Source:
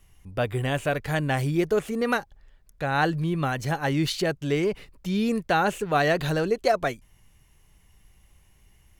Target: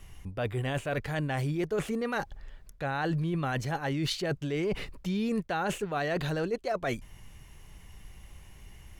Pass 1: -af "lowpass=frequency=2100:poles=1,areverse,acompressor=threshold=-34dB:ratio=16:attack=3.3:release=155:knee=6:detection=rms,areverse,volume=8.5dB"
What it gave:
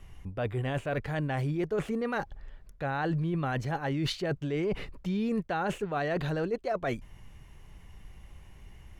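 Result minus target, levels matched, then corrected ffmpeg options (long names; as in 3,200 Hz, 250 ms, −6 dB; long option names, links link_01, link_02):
8,000 Hz band −6.5 dB
-af "lowpass=frequency=6800:poles=1,areverse,acompressor=threshold=-34dB:ratio=16:attack=3.3:release=155:knee=6:detection=rms,areverse,volume=8.5dB"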